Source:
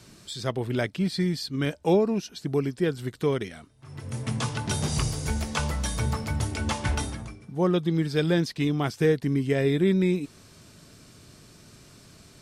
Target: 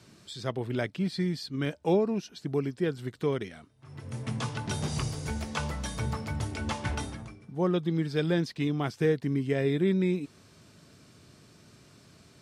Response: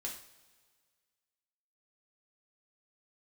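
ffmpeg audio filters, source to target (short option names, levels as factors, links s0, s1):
-af "highpass=72,highshelf=f=6700:g=-7.5,volume=0.668"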